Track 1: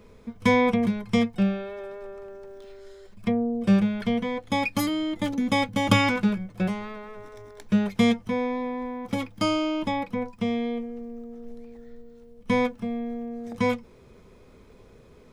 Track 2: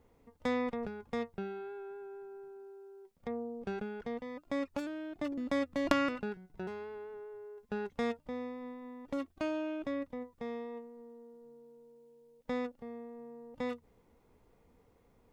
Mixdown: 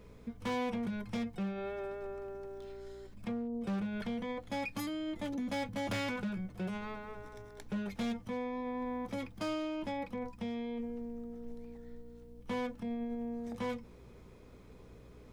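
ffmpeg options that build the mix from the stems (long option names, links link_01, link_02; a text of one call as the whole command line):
ffmpeg -i stem1.wav -i stem2.wav -filter_complex "[0:a]volume=-5dB[link_01];[1:a]aeval=exprs='val(0)+0.00355*(sin(2*PI*60*n/s)+sin(2*PI*2*60*n/s)/2+sin(2*PI*3*60*n/s)/3+sin(2*PI*4*60*n/s)/4+sin(2*PI*5*60*n/s)/5)':channel_layout=same,lowshelf=frequency=370:gain=-10,volume=1.5dB[link_02];[link_01][link_02]amix=inputs=2:normalize=0,asoftclip=type=hard:threshold=-24.5dB,alimiter=level_in=8dB:limit=-24dB:level=0:latency=1:release=25,volume=-8dB" out.wav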